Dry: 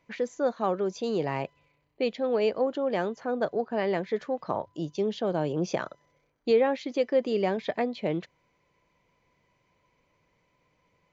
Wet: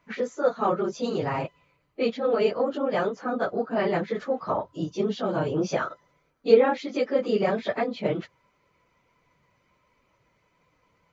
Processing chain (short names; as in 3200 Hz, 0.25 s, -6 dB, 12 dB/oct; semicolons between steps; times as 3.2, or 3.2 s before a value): phase scrambler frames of 50 ms; bell 1300 Hz +9 dB 0.33 oct; gain +2 dB